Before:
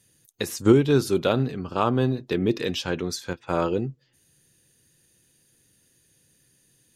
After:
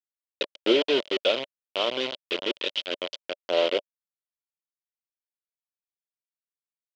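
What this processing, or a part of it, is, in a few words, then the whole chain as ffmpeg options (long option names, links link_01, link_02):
hand-held game console: -filter_complex "[0:a]highpass=300,acrusher=bits=3:mix=0:aa=0.000001,highpass=400,equalizer=frequency=580:width_type=q:width=4:gain=10,equalizer=frequency=820:width_type=q:width=4:gain=-8,equalizer=frequency=1200:width_type=q:width=4:gain=-10,equalizer=frequency=1700:width_type=q:width=4:gain=-8,equalizer=frequency=3100:width_type=q:width=4:gain=10,lowpass=frequency=4200:width=0.5412,lowpass=frequency=4200:width=1.3066,asettb=1/sr,asplit=3[link_01][link_02][link_03];[link_01]atrim=end=1.124[link_04];[link_02]atrim=start=1.12:end=3,asetpts=PTS-STARTPTS,afade=type=in:duration=0.004:curve=qsin,afade=type=out:start_time=1.876:duration=0.004:curve=qsin,equalizer=frequency=570:width=1.4:gain=-5.5[link_05];[link_03]atrim=start=2.996[link_06];[link_04][link_05]acrossfade=duration=0.004:curve1=hsin:curve2=qsin[link_07];[link_07][link_06]acrossfade=duration=0.004:curve1=qsin:curve2=hsin"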